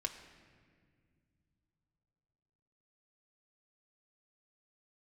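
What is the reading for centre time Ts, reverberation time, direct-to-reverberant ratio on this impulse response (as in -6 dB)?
21 ms, 1.9 s, 1.5 dB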